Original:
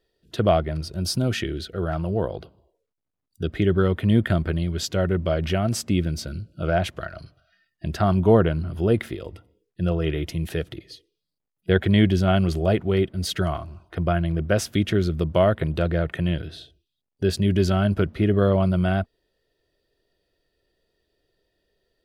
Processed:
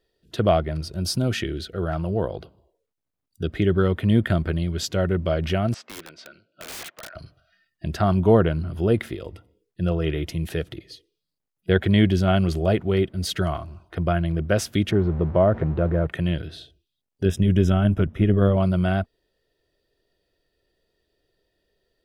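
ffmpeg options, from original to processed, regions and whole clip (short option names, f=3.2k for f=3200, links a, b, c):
-filter_complex "[0:a]asettb=1/sr,asplit=3[a][b][c];[a]atrim=end=5.744[d];[b]atrim=start=5.74:end=7.15,asetpts=PTS-STARTPTS,afade=t=in:d=0.004:c=qsin,afade=t=out:st=1.406:d=0.004:c=qsin,highpass=690,lowpass=2.7k,aeval=exprs='(mod(35.5*val(0)+1,2)-1)/35.5':c=same[e];[c]atrim=start=7.146[f];[d][e]acrossfade=d=0.004:c1=hsin:c2=qsin[g];[g][f]acrossfade=d=0.004:c1=qsin:c2=hsin,asettb=1/sr,asplit=3[h][i][j];[h]atrim=end=14.914[k];[i]atrim=start=14.91:end=16.07,asetpts=PTS-STARTPTS,afade=t=in:d=0.004:c=qsin,afade=t=out:st=1.156:d=0.004:c=qsin,aeval=exprs='val(0)+0.5*0.0316*sgn(val(0))':c=same,lowpass=1.2k[l];[j]atrim=start=16.066[m];[k][l]acrossfade=d=0.004:c1=hsin:c2=qsin[n];[n][m]acrossfade=d=0.004:c1=qsin:c2=hsin,asettb=1/sr,asplit=3[o][p][q];[o]atrim=end=17.254[r];[p]atrim=start=17.25:end=18.57,asetpts=PTS-STARTPTS,afade=t=in:d=0.004:c=qsin,afade=t=out:st=1.316:d=0.004:c=qsin,bass=f=250:g=5,treble=f=4k:g=-1,tremolo=f=92:d=0.462,asuperstop=centerf=4400:order=8:qfactor=3.7[s];[q]atrim=start=18.566[t];[r][s]acrossfade=d=0.004:c1=hsin:c2=qsin[u];[u][t]acrossfade=d=0.004:c1=qsin:c2=hsin"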